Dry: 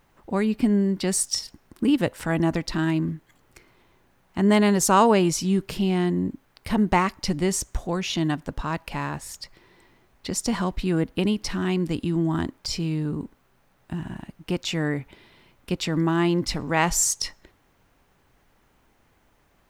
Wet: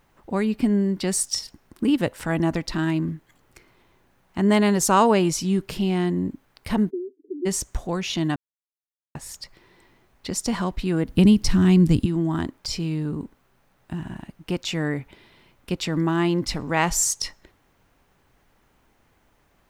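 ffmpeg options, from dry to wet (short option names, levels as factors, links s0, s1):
-filter_complex "[0:a]asplit=3[s0][s1][s2];[s0]afade=t=out:st=6.89:d=0.02[s3];[s1]asuperpass=centerf=340:order=12:qfactor=2.1,afade=t=in:st=6.89:d=0.02,afade=t=out:st=7.45:d=0.02[s4];[s2]afade=t=in:st=7.45:d=0.02[s5];[s3][s4][s5]amix=inputs=3:normalize=0,asettb=1/sr,asplit=3[s6][s7][s8];[s6]atrim=end=11.074[s9];[s7]atrim=start=11.07:end=12.06,asetpts=PTS-STARTPTS,afade=t=in:d=0.004:c=qsin,afade=t=out:st=0.986:d=0.004:c=qsin,bass=f=250:g=14,treble=f=4000:g=6[s10];[s8]atrim=start=12.056[s11];[s9][s10]acrossfade=d=0.004:c1=hsin:c2=qsin[s12];[s12][s11]acrossfade=d=0.004:c1=qsin:c2=hsin,asplit=3[s13][s14][s15];[s13]atrim=end=8.36,asetpts=PTS-STARTPTS,afade=t=out:st=8.356:d=0.004:c=hsin[s16];[s14]atrim=start=8.36:end=9.15,asetpts=PTS-STARTPTS,volume=0[s17];[s15]atrim=start=9.15,asetpts=PTS-STARTPTS,afade=t=in:d=0.004:c=hsin[s18];[s16][s17][s18]concat=n=3:v=0:a=1"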